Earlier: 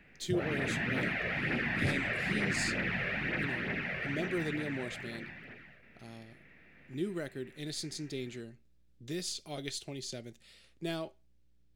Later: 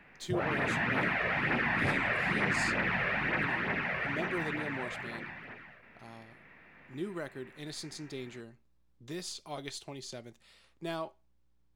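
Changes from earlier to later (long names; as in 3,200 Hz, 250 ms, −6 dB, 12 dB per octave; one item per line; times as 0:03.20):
speech −3.5 dB
master: add parametric band 1,000 Hz +13 dB 0.96 octaves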